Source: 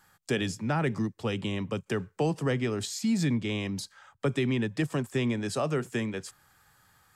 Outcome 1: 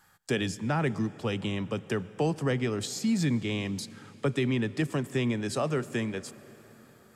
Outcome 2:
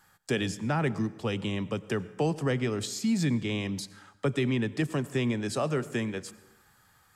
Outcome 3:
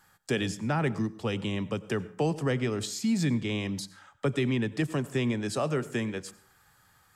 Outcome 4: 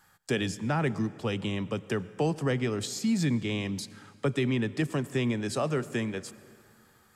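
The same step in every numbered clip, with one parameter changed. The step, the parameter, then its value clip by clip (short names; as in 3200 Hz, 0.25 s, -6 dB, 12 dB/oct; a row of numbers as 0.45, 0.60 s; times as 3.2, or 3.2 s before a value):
plate-style reverb, RT60: 5, 1.1, 0.51, 2.4 s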